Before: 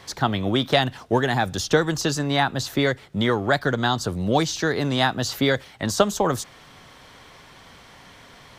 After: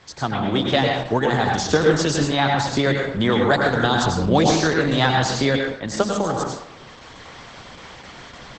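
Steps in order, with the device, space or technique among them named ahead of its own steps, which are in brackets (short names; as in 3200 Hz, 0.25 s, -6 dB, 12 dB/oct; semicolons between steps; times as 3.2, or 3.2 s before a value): speakerphone in a meeting room (reverb RT60 0.75 s, pre-delay 88 ms, DRR 0.5 dB; speakerphone echo 0.37 s, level -30 dB; AGC gain up to 9 dB; gain -2.5 dB; Opus 12 kbps 48000 Hz)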